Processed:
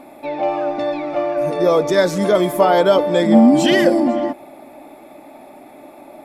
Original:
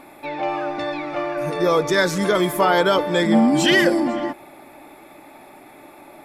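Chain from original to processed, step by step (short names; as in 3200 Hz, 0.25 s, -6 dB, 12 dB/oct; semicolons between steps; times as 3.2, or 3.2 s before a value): fifteen-band EQ 250 Hz +8 dB, 630 Hz +9 dB, 1600 Hz -3 dB; gain -1.5 dB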